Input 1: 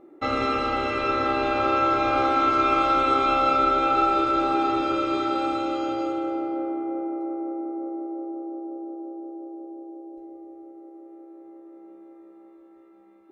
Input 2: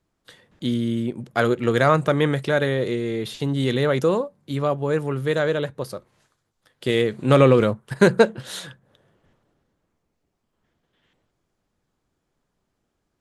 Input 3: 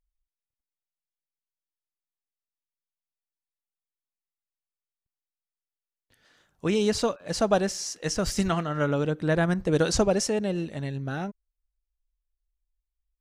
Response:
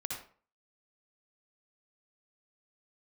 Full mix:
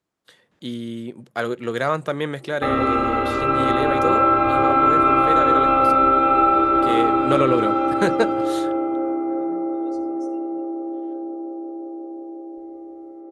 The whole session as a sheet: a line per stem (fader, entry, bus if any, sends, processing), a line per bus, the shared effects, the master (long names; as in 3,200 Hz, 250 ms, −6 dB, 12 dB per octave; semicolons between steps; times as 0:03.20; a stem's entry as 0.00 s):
+1.0 dB, 2.40 s, send −4 dB, low-pass filter 2,000 Hz 12 dB per octave
−3.5 dB, 0.00 s, no send, high-pass filter 240 Hz 6 dB per octave
−16.5 dB, 0.00 s, send −9.5 dB, spectral dynamics exaggerated over time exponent 2; stiff-string resonator 89 Hz, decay 0.51 s, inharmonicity 0.008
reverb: on, RT60 0.45 s, pre-delay 55 ms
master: no processing